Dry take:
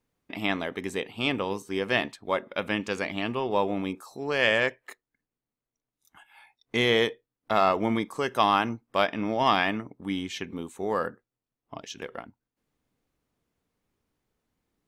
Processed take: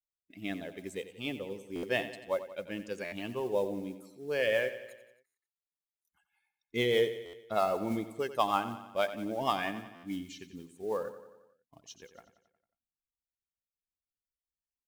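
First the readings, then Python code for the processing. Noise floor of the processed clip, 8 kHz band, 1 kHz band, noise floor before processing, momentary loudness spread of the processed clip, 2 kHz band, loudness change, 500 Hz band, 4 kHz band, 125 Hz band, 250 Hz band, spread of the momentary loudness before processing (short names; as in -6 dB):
under -85 dBFS, -5.5 dB, -8.0 dB, under -85 dBFS, 15 LU, -9.5 dB, -6.5 dB, -4.0 dB, -9.5 dB, -8.0 dB, -7.5 dB, 13 LU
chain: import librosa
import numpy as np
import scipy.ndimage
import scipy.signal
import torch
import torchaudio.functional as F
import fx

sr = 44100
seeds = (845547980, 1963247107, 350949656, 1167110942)

p1 = fx.bin_expand(x, sr, power=1.5)
p2 = fx.mod_noise(p1, sr, seeds[0], snr_db=22)
p3 = fx.dynamic_eq(p2, sr, hz=540.0, q=1.4, threshold_db=-41.0, ratio=4.0, max_db=6)
p4 = fx.rotary_switch(p3, sr, hz=0.85, then_hz=6.3, switch_at_s=3.75)
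p5 = p4 + fx.echo_feedback(p4, sr, ms=90, feedback_pct=58, wet_db=-13.0, dry=0)
p6 = fx.buffer_glitch(p5, sr, at_s=(1.75, 3.04, 5.26, 7.25, 9.95), block=512, repeats=6)
y = p6 * librosa.db_to_amplitude(-4.5)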